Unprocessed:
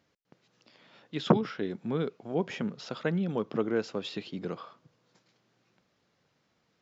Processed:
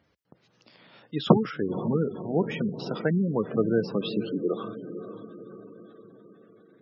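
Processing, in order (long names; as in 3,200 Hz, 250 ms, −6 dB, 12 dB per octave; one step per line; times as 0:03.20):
high-pass filter sweep 60 Hz → 1,600 Hz, 0:03.37–0:05.47
feedback delay with all-pass diffusion 518 ms, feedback 53%, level −10.5 dB
gate on every frequency bin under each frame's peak −20 dB strong
level +4 dB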